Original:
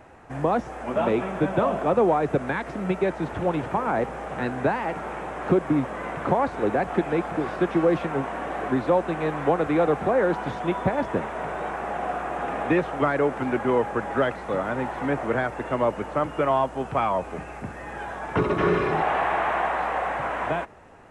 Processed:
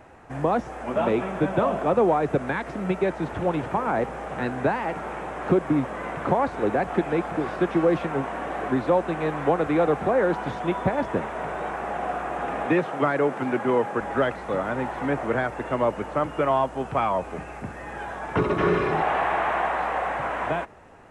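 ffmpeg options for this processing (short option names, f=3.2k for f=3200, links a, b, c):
-filter_complex "[0:a]asettb=1/sr,asplit=3[a][b][c];[a]atrim=end=12.664[d];[b]atrim=start=12.66:end=14.01,asetpts=PTS-STARTPTS,afade=t=in:d=0.004:c=qsin,afade=t=out:st=1.346:d=0.004:c=qsin,highpass=f=110:w=0.5412,highpass=f=110:w=1.3066[e];[c]atrim=start=14.006[f];[d][e]acrossfade=d=0.004:c1=hsin:c2=qsin[g];[g][f]acrossfade=d=0.004:c1=qsin:c2=hsin"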